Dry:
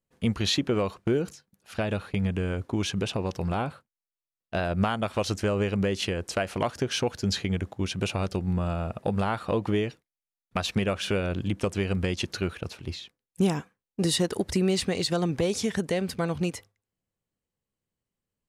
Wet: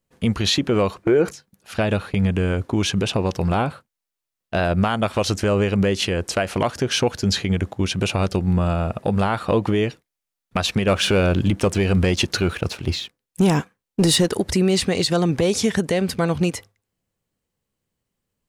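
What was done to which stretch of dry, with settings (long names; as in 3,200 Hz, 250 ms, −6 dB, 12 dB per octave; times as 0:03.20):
0:01.03–0:01.31: gain on a spectral selection 320–2,500 Hz +9 dB
0:10.87–0:14.30: leveller curve on the samples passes 1
whole clip: brickwall limiter −17.5 dBFS; level +8 dB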